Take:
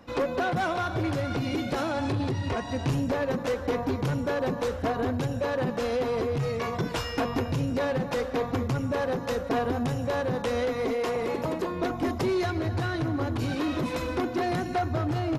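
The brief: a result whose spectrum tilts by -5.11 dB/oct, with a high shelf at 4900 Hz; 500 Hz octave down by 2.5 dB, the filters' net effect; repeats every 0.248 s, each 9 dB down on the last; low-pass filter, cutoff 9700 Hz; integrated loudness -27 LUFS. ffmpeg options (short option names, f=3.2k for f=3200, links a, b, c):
-af "lowpass=9.7k,equalizer=f=500:t=o:g=-3,highshelf=f=4.9k:g=6.5,aecho=1:1:248|496|744|992:0.355|0.124|0.0435|0.0152,volume=2dB"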